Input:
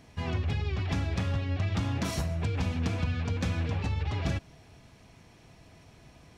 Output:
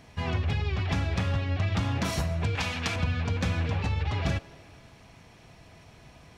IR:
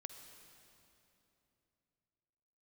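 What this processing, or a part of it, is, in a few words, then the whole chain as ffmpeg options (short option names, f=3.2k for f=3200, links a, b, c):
filtered reverb send: -filter_complex "[0:a]asplit=2[a][b];[b]highpass=f=280:w=0.5412,highpass=f=280:w=1.3066,lowpass=5.1k[c];[1:a]atrim=start_sample=2205[d];[c][d]afir=irnorm=-1:irlink=0,volume=-5dB[e];[a][e]amix=inputs=2:normalize=0,asettb=1/sr,asplit=3[f][g][h];[f]atrim=end=2.554[i];[g]atrim=start=2.55:end=2.96,asetpts=PTS-STARTPTS,afade=t=in:d=0.004:c=qsin,afade=t=out:st=0.406:d=0.004:c=qsin,tiltshelf=f=680:g=-7.5[j];[h]atrim=start=2.956[k];[i][j]acrossfade=d=0.004:c1=hsin:c2=qsin[l];[l][k]acrossfade=d=0.004:c1=qsin:c2=hsin,volume=2dB"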